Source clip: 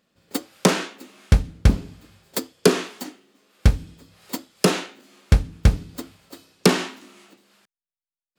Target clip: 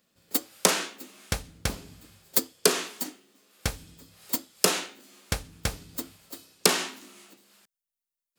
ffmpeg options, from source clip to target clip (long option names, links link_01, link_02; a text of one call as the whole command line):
ffmpeg -i in.wav -filter_complex "[0:a]acrossover=split=450|3600[link_01][link_02][link_03];[link_01]acompressor=threshold=-26dB:ratio=6[link_04];[link_04][link_02][link_03]amix=inputs=3:normalize=0,highshelf=frequency=5900:gain=12,volume=-4dB" out.wav